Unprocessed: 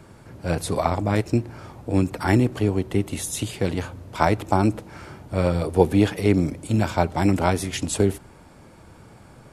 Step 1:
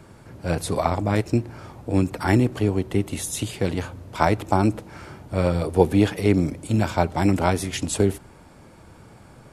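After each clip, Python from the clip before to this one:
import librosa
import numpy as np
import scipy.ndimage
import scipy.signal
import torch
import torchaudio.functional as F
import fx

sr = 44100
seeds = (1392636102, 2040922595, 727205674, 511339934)

y = x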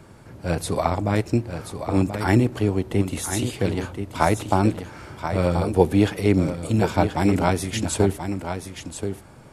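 y = x + 10.0 ** (-8.5 / 20.0) * np.pad(x, (int(1031 * sr / 1000.0), 0))[:len(x)]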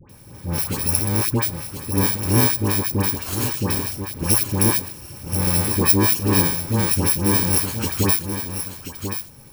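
y = fx.bit_reversed(x, sr, seeds[0], block=64)
y = fx.dispersion(y, sr, late='highs', ms=94.0, hz=1200.0)
y = y * 10.0 ** (1.5 / 20.0)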